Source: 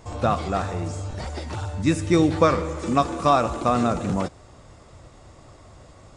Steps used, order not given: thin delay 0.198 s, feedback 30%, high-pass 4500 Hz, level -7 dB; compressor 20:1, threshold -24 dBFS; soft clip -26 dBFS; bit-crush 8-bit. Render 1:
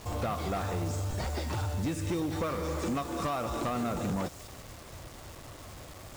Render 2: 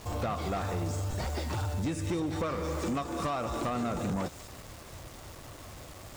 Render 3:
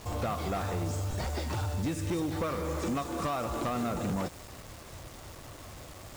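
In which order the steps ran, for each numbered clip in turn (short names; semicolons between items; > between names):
thin delay > compressor > soft clip > bit-crush; bit-crush > thin delay > compressor > soft clip; compressor > soft clip > bit-crush > thin delay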